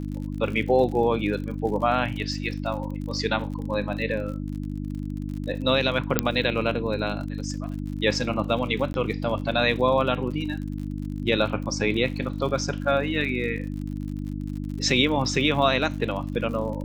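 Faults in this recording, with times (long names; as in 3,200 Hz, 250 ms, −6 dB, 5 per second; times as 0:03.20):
surface crackle 55 per second −34 dBFS
mains hum 50 Hz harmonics 6 −31 dBFS
0:06.19: click −2 dBFS
0:08.93–0:08.94: drop-out 11 ms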